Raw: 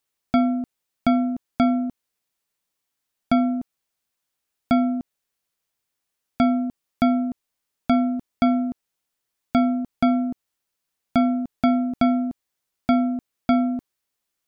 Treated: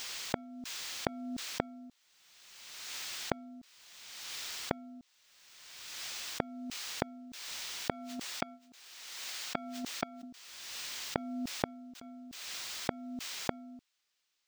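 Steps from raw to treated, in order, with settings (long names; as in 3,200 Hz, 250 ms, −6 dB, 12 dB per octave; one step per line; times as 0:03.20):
0:07.90–0:10.23: high-pass filter 710 Hz 6 dB per octave
noise gate −27 dBFS, range −27 dB
downward compressor 16 to 1, threshold −27 dBFS, peak gain reduction 13.5 dB
brickwall limiter −22.5 dBFS, peak gain reduction 10 dB
gate with flip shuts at −41 dBFS, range −34 dB
background noise violet −77 dBFS
high-frequency loss of the air 170 metres
background raised ahead of every attack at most 32 dB per second
level +16.5 dB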